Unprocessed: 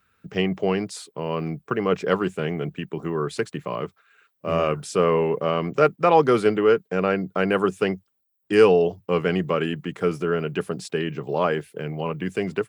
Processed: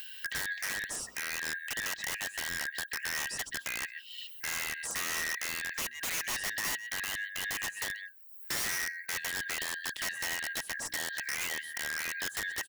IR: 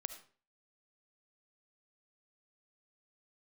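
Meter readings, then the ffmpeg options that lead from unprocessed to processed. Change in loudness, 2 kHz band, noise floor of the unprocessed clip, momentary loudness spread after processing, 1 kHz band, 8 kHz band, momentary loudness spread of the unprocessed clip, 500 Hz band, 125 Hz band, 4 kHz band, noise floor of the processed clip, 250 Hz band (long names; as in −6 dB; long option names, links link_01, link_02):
−10.5 dB, −0.5 dB, −73 dBFS, 4 LU, −18.0 dB, can't be measured, 12 LU, −30.5 dB, −26.0 dB, 0.0 dB, −50 dBFS, −27.0 dB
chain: -filter_complex "[0:a]afftfilt=real='real(if(lt(b,272),68*(eq(floor(b/68),0)*3+eq(floor(b/68),1)*0+eq(floor(b/68),2)*1+eq(floor(b/68),3)*2)+mod(b,68),b),0)':imag='imag(if(lt(b,272),68*(eq(floor(b/68),0)*3+eq(floor(b/68),1)*0+eq(floor(b/68),2)*1+eq(floor(b/68),3)*2)+mod(b,68),b),0)':win_size=2048:overlap=0.75,asplit=2[link_01][link_02];[link_02]adelay=130,highpass=300,lowpass=3400,asoftclip=type=hard:threshold=-12.5dB,volume=-17dB[link_03];[link_01][link_03]amix=inputs=2:normalize=0,acrossover=split=450|3000[link_04][link_05][link_06];[link_05]acompressor=threshold=-32dB:ratio=2[link_07];[link_04][link_07][link_06]amix=inputs=3:normalize=0,asplit=2[link_08][link_09];[link_09]acrusher=bits=2:mix=0:aa=0.5,volume=-7dB[link_10];[link_08][link_10]amix=inputs=2:normalize=0,aemphasis=mode=production:type=75kf,bandreject=frequency=60:width_type=h:width=6,bandreject=frequency=120:width_type=h:width=6,bandreject=frequency=180:width_type=h:width=6,bandreject=frequency=240:width_type=h:width=6,bandreject=frequency=300:width_type=h:width=6,bandreject=frequency=360:width_type=h:width=6,acompressor=mode=upward:threshold=-16dB:ratio=2.5,asoftclip=type=tanh:threshold=-9dB,highshelf=frequency=4300:gain=-8,aeval=exprs='(mod(8.91*val(0)+1,2)-1)/8.91':channel_layout=same,alimiter=limit=-23dB:level=0:latency=1:release=209,volume=-5dB"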